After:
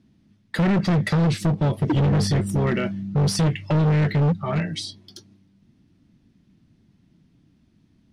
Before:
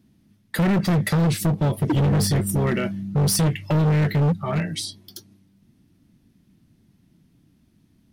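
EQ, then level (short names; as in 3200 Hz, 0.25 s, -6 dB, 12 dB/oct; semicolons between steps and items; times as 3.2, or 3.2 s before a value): LPF 6100 Hz 12 dB/oct; 0.0 dB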